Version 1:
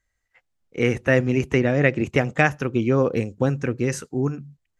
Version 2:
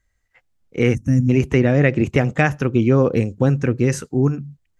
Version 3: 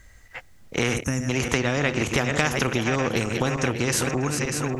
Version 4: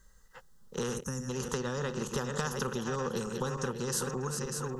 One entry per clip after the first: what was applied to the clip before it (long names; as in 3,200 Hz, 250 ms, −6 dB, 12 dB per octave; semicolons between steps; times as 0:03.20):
gain on a spectral selection 0:00.95–0:01.30, 320–5,300 Hz −23 dB; in parallel at −2 dB: brickwall limiter −12.5 dBFS, peak gain reduction 10 dB; on the sum: low-shelf EQ 280 Hz +6 dB; level −2.5 dB
feedback delay that plays each chunk backwards 297 ms, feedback 54%, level −10.5 dB; downward compressor 3 to 1, threshold −23 dBFS, peak gain reduction 10.5 dB; every bin compressed towards the loudest bin 2 to 1; level +4 dB
phaser with its sweep stopped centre 450 Hz, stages 8; level −6.5 dB